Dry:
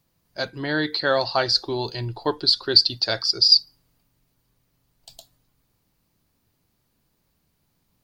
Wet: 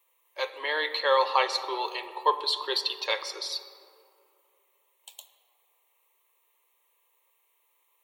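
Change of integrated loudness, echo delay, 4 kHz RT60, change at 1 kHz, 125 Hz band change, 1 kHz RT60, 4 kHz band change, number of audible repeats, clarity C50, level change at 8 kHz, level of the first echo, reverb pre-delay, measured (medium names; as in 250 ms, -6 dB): -8.0 dB, no echo, 1.1 s, +3.0 dB, under -40 dB, 2.5 s, -11.0 dB, no echo, 11.5 dB, -4.0 dB, no echo, 8 ms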